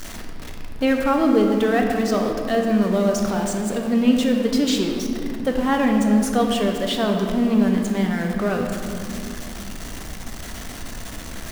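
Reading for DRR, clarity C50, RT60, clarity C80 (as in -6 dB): 2.0 dB, 4.0 dB, 2.9 s, 5.0 dB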